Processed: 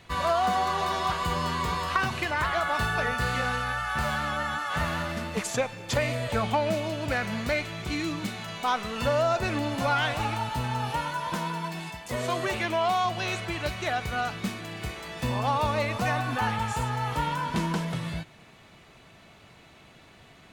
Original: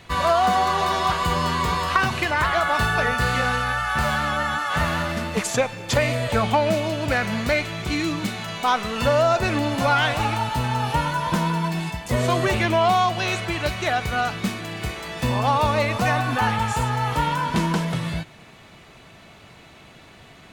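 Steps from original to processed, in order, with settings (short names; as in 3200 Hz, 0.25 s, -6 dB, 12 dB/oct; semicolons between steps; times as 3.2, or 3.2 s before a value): 10.94–13.05 low shelf 220 Hz -9 dB; gain -6 dB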